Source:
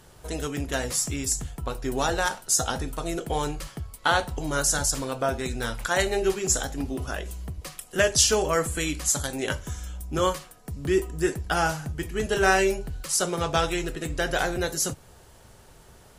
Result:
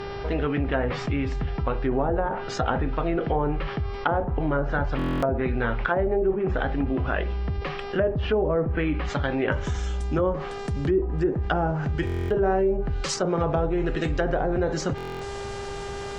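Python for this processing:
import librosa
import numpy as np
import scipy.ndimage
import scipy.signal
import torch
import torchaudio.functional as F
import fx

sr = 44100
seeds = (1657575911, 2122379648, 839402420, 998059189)

y = fx.lowpass(x, sr, hz=fx.steps((0.0, 2900.0), (9.52, 7500.0)), slope=24)
y = fx.dmg_buzz(y, sr, base_hz=400.0, harmonics=14, level_db=-50.0, tilt_db=-7, odd_only=False)
y = fx.env_lowpass_down(y, sr, base_hz=610.0, full_db=-21.0)
y = fx.buffer_glitch(y, sr, at_s=(4.97, 12.05, 14.96), block=1024, repeats=10)
y = fx.env_flatten(y, sr, amount_pct=50)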